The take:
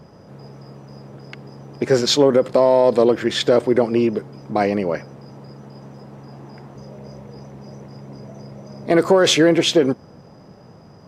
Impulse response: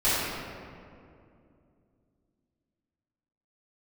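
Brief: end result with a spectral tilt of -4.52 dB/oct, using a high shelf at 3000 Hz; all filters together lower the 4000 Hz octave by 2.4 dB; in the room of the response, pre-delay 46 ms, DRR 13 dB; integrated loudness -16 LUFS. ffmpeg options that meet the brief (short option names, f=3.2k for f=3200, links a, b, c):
-filter_complex "[0:a]highshelf=f=3k:g=4,equalizer=f=4k:t=o:g=-6,asplit=2[a][b];[1:a]atrim=start_sample=2205,adelay=46[c];[b][c]afir=irnorm=-1:irlink=0,volume=-28.5dB[d];[a][d]amix=inputs=2:normalize=0,volume=1dB"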